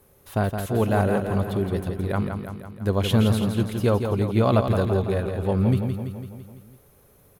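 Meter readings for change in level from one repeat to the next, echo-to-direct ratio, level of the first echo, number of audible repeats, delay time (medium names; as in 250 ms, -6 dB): -4.5 dB, -4.5 dB, -6.5 dB, 6, 167 ms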